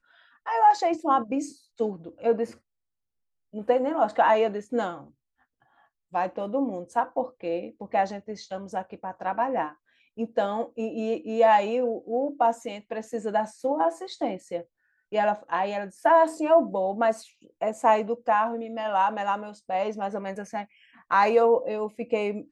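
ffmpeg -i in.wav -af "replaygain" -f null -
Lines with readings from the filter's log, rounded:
track_gain = +4.4 dB
track_peak = 0.266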